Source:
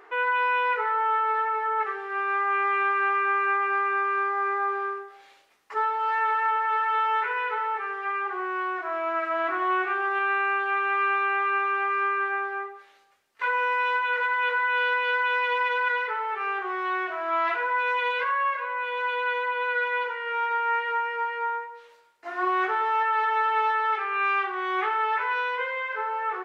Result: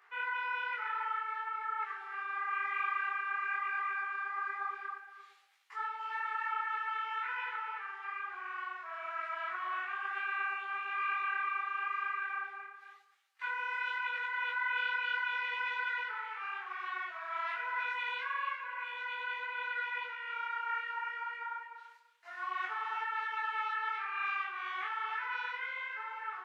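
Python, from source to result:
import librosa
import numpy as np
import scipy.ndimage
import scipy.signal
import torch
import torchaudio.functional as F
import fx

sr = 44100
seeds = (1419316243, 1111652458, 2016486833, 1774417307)

y = scipy.signal.sosfilt(scipy.signal.butter(2, 1300.0, 'highpass', fs=sr, output='sos'), x)
y = y + 10.0 ** (-10.5 / 20.0) * np.pad(y, (int(294 * sr / 1000.0), 0))[:len(y)]
y = fx.detune_double(y, sr, cents=37)
y = y * librosa.db_to_amplitude(-4.0)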